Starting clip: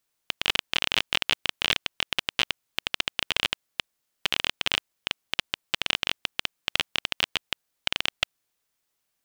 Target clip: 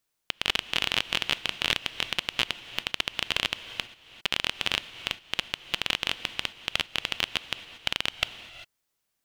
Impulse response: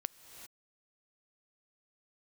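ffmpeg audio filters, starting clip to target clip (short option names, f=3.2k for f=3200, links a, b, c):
-filter_complex "[0:a]asplit=2[a][b];[1:a]atrim=start_sample=2205,lowshelf=f=350:g=4[c];[b][c]afir=irnorm=-1:irlink=0,volume=5dB[d];[a][d]amix=inputs=2:normalize=0,volume=-9dB"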